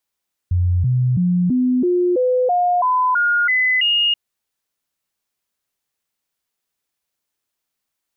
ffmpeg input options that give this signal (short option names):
-f lavfi -i "aevalsrc='0.211*clip(min(mod(t,0.33),0.33-mod(t,0.33))/0.005,0,1)*sin(2*PI*89.1*pow(2,floor(t/0.33)/2)*mod(t,0.33))':d=3.63:s=44100"